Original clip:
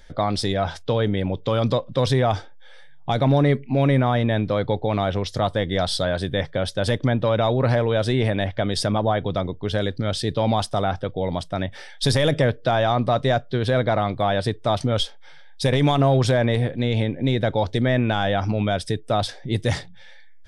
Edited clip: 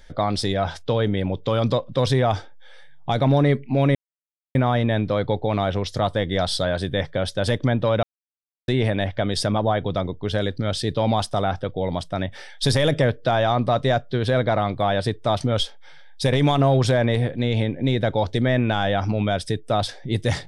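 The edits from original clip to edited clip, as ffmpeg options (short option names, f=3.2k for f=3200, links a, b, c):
-filter_complex "[0:a]asplit=4[a][b][c][d];[a]atrim=end=3.95,asetpts=PTS-STARTPTS,afade=t=out:st=3.946:d=0.004:c=hsin,apad=pad_dur=0.6[e];[b]atrim=start=3.95:end=7.43,asetpts=PTS-STARTPTS,afade=t=in:d=0.004:c=hsin,afade=t=out:st=3.476:d=0.004:c=hsin[f];[c]atrim=start=7.43:end=8.08,asetpts=PTS-STARTPTS,volume=0[g];[d]atrim=start=8.08,asetpts=PTS-STARTPTS,afade=t=in:d=0.004:c=hsin[h];[e][f][g][h]concat=n=4:v=0:a=1"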